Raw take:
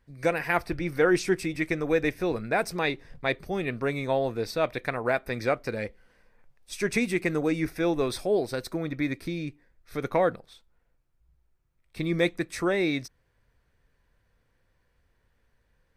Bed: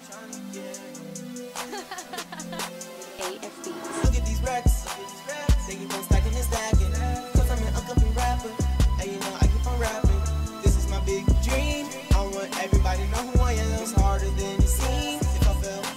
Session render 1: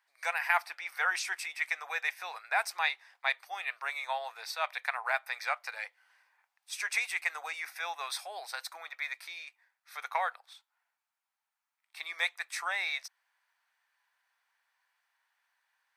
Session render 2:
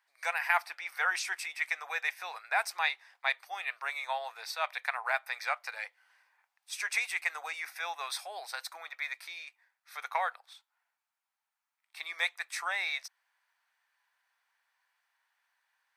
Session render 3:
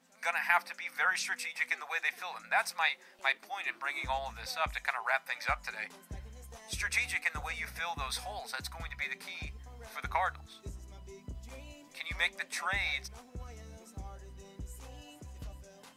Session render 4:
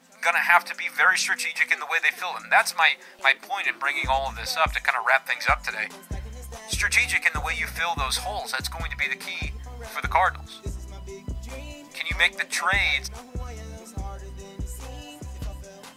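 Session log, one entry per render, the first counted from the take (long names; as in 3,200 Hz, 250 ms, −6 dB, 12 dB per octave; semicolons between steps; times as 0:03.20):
elliptic high-pass filter 800 Hz, stop band 80 dB
no processing that can be heard
mix in bed −24 dB
level +11 dB; brickwall limiter −3 dBFS, peak gain reduction 2.5 dB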